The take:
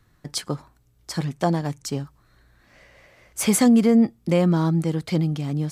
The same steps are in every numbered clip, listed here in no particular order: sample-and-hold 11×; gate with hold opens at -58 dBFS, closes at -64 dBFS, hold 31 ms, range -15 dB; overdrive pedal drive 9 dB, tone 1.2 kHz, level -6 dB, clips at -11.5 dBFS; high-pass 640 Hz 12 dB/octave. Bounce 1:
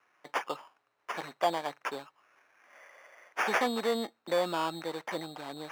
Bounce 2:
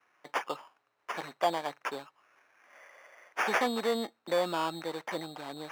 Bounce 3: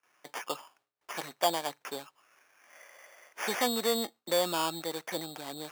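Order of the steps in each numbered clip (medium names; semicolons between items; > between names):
gate with hold > sample-and-hold > overdrive pedal > high-pass; sample-and-hold > gate with hold > overdrive pedal > high-pass; overdrive pedal > sample-and-hold > high-pass > gate with hold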